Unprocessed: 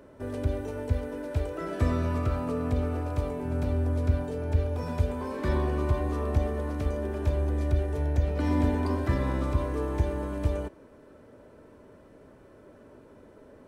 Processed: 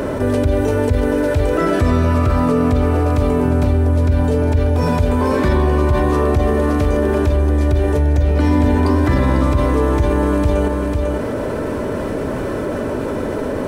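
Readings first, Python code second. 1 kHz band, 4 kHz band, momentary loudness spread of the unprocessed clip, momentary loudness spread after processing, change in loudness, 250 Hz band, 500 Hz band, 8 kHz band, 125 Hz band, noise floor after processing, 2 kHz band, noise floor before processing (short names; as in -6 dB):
+15.0 dB, +14.5 dB, 5 LU, 7 LU, +12.5 dB, +15.0 dB, +15.0 dB, n/a, +12.0 dB, -22 dBFS, +15.5 dB, -53 dBFS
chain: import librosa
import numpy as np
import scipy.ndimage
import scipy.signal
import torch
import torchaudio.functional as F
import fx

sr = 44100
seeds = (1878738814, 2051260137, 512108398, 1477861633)

y = x + 10.0 ** (-11.0 / 20.0) * np.pad(x, (int(498 * sr / 1000.0), 0))[:len(x)]
y = fx.env_flatten(y, sr, amount_pct=70)
y = y * librosa.db_to_amplitude(7.0)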